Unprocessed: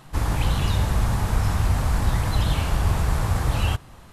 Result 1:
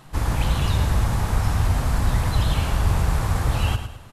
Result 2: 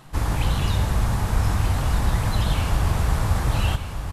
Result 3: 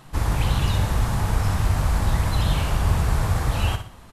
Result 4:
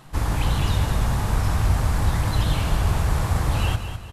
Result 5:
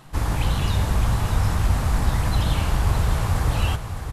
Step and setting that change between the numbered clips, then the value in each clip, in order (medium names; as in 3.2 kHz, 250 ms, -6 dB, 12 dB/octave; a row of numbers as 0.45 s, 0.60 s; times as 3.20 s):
feedback delay, time: 107 ms, 1231 ms, 61 ms, 205 ms, 611 ms